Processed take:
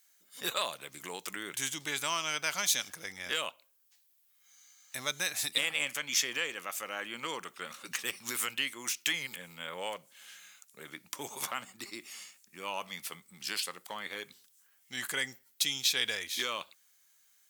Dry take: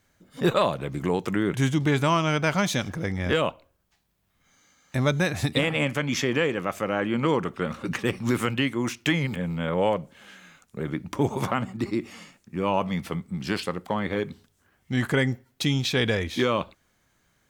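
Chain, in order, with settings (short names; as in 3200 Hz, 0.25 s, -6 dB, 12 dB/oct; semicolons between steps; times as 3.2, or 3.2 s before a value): differentiator; gain +5.5 dB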